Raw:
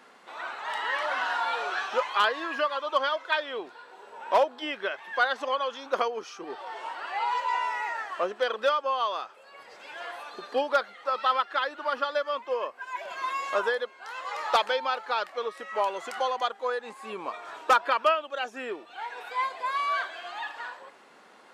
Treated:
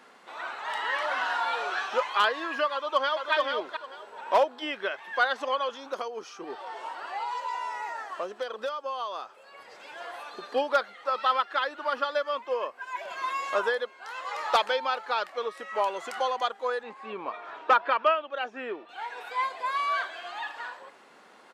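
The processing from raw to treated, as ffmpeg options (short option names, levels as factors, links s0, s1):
-filter_complex "[0:a]asplit=2[s0][s1];[s1]afade=t=in:st=2.72:d=0.01,afade=t=out:st=3.32:d=0.01,aecho=0:1:440|880|1320:0.630957|0.126191|0.0252383[s2];[s0][s2]amix=inputs=2:normalize=0,asettb=1/sr,asplit=3[s3][s4][s5];[s3]atrim=end=5.694[s6];[s4]atrim=start=5.69:end=10.14,asetpts=PTS-STARTPTS,afade=t=in:d=0.004:c=qsin,afade=t=out:st=4.446:d=0.004:c=qsin,acrossover=split=1500|3600[s7][s8][s9];[s7]acompressor=threshold=0.0282:ratio=4[s10];[s8]acompressor=threshold=0.00282:ratio=4[s11];[s9]acompressor=threshold=0.00447:ratio=4[s12];[s10][s11][s12]amix=inputs=3:normalize=0[s13];[s5]atrim=start=10.136[s14];[s6][s13]acrossfade=d=0.004:c1=hsin:c2=qsin[s15];[s15][s14]acrossfade=d=0.004:c1=qsin:c2=hsin,asettb=1/sr,asplit=3[s16][s17][s18];[s16]atrim=end=16.834[s19];[s17]atrim=start=16.83:end=18.89,asetpts=PTS-STARTPTS,afade=t=in:d=0.004:c=qsin,afade=t=out:st=2.056:d=0.004:c=qsin,highpass=110,lowpass=3200[s20];[s18]atrim=start=18.886[s21];[s19][s20]acrossfade=d=0.004:c1=hsin:c2=qsin[s22];[s22][s21]acrossfade=d=0.004:c1=qsin:c2=hsin"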